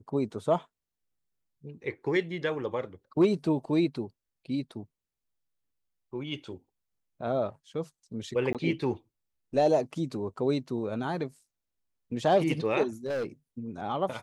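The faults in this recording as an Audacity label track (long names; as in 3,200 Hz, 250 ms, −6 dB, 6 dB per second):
8.530000	8.550000	drop-out 17 ms
13.060000	13.250000	clipping −28 dBFS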